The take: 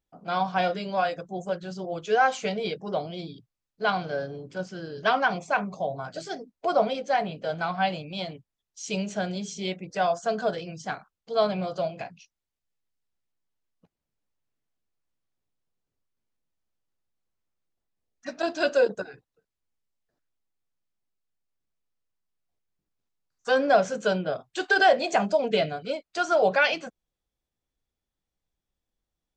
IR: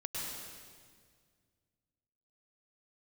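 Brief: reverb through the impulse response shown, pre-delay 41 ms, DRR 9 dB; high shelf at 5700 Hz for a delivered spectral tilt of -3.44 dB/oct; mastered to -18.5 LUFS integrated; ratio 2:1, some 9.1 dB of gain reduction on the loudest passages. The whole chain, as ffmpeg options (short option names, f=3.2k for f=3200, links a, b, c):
-filter_complex "[0:a]highshelf=f=5.7k:g=-7.5,acompressor=threshold=-32dB:ratio=2,asplit=2[a][b];[1:a]atrim=start_sample=2205,adelay=41[c];[b][c]afir=irnorm=-1:irlink=0,volume=-11dB[d];[a][d]amix=inputs=2:normalize=0,volume=14.5dB"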